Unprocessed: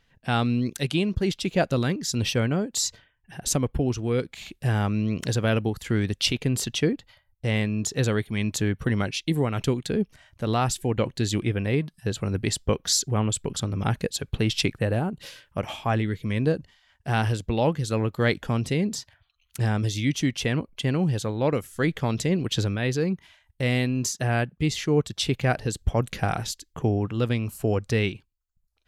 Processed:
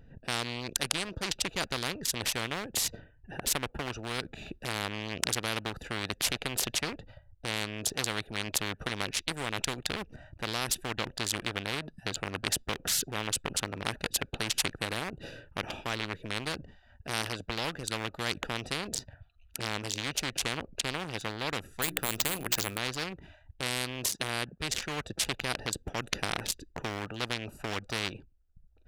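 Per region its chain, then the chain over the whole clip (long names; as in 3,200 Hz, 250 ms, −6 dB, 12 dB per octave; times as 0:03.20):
0:21.82–0:22.78: mains-hum notches 60/120/180/240/300/360 Hz + bad sample-rate conversion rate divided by 4×, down none, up hold
whole clip: adaptive Wiener filter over 41 samples; every bin compressed towards the loudest bin 4 to 1; level +4 dB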